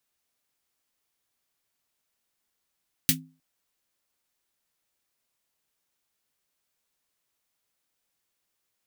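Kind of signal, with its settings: snare drum length 0.31 s, tones 160 Hz, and 260 Hz, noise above 1900 Hz, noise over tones 11 dB, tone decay 0.37 s, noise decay 0.11 s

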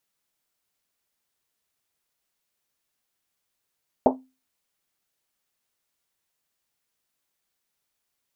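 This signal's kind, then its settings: Risset drum, pitch 260 Hz, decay 0.30 s, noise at 640 Hz, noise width 530 Hz, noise 55%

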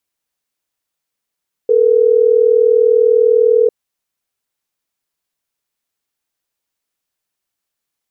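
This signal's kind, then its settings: call progress tone ringback tone, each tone -10.5 dBFS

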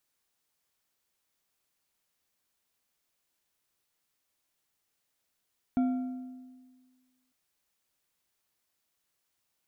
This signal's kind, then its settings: metal hit bar, lowest mode 255 Hz, decay 1.63 s, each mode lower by 12 dB, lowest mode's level -22 dB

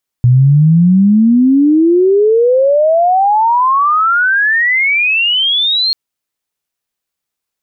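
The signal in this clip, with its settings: chirp logarithmic 120 Hz -> 4300 Hz -4 dBFS -> -10 dBFS 5.69 s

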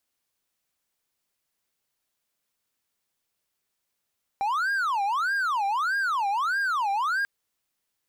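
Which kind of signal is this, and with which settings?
siren wail 788–1620 Hz 1.6/s triangle -21 dBFS 2.84 s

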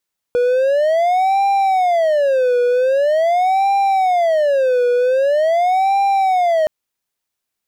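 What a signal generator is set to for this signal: siren wail 487–793 Hz 0.44/s triangle -10 dBFS 6.32 s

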